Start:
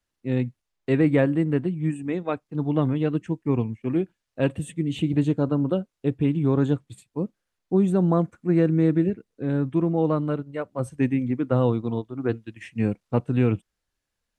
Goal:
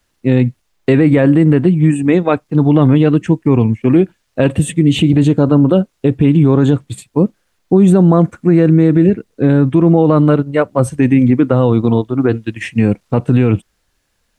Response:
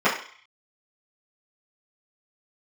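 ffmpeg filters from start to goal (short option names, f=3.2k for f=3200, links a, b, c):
-af "alimiter=level_in=18dB:limit=-1dB:release=50:level=0:latency=1,volume=-1dB"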